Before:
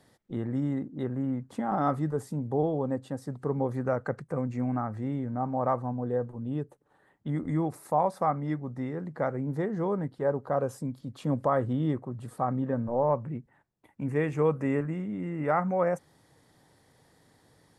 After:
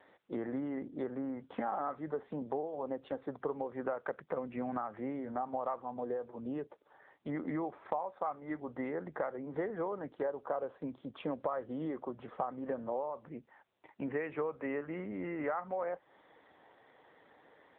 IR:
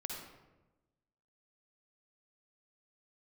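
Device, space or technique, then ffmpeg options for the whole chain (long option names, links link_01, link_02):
voicemail: -af "highpass=430,lowpass=3000,acompressor=threshold=-38dB:ratio=8,volume=6dB" -ar 8000 -c:a libopencore_amrnb -b:a 7950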